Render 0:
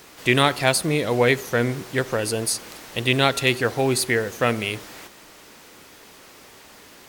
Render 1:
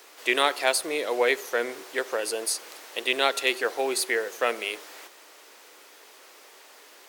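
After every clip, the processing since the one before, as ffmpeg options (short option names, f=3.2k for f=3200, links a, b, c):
-af "highpass=f=370:w=0.5412,highpass=f=370:w=1.3066,volume=-3.5dB"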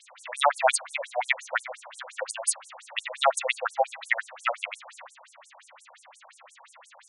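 -af "equalizer=f=5.2k:t=o:w=0.67:g=-12.5,asoftclip=type=tanh:threshold=-6dB,afftfilt=real='re*between(b*sr/1024,690*pow(8000/690,0.5+0.5*sin(2*PI*5.7*pts/sr))/1.41,690*pow(8000/690,0.5+0.5*sin(2*PI*5.7*pts/sr))*1.41)':imag='im*between(b*sr/1024,690*pow(8000/690,0.5+0.5*sin(2*PI*5.7*pts/sr))/1.41,690*pow(8000/690,0.5+0.5*sin(2*PI*5.7*pts/sr))*1.41)':win_size=1024:overlap=0.75,volume=8dB"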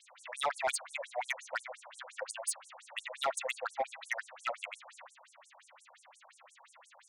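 -af "asoftclip=type=tanh:threshold=-18dB,volume=-7dB"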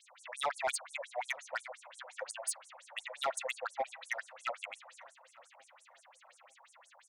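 -filter_complex "[0:a]asplit=2[a][b];[b]adelay=899,lowpass=f=1.4k:p=1,volume=-21.5dB,asplit=2[c][d];[d]adelay=899,lowpass=f=1.4k:p=1,volume=0.45,asplit=2[e][f];[f]adelay=899,lowpass=f=1.4k:p=1,volume=0.45[g];[a][c][e][g]amix=inputs=4:normalize=0,volume=-1.5dB"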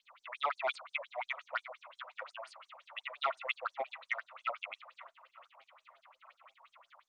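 -filter_complex "[0:a]acrossover=split=780[a][b];[a]aeval=exprs='val(0)*(1-0.5/2+0.5/2*cos(2*PI*4.7*n/s))':c=same[c];[b]aeval=exprs='val(0)*(1-0.5/2-0.5/2*cos(2*PI*4.7*n/s))':c=same[d];[c][d]amix=inputs=2:normalize=0,highpass=440,equalizer=f=510:t=q:w=4:g=-8,equalizer=f=800:t=q:w=4:g=-7,equalizer=f=1.2k:t=q:w=4:g=5,equalizer=f=1.7k:t=q:w=4:g=-9,lowpass=f=3.6k:w=0.5412,lowpass=f=3.6k:w=1.3066,volume=6.5dB" -ar 48000 -c:a libopus -b:a 32k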